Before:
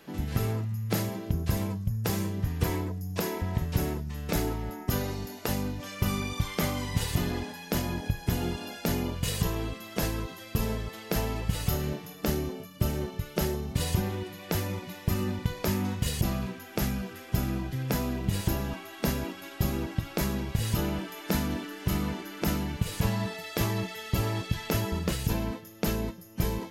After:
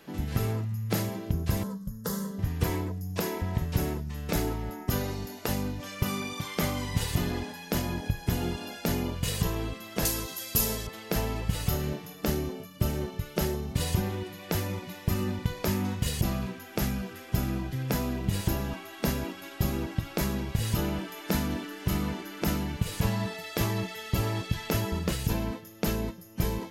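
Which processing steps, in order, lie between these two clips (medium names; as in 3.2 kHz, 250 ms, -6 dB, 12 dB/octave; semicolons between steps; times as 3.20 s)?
1.63–2.39 s: static phaser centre 490 Hz, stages 8; 6.03–6.57 s: high-pass 170 Hz 12 dB/octave; 10.05–10.87 s: tone controls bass -4 dB, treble +15 dB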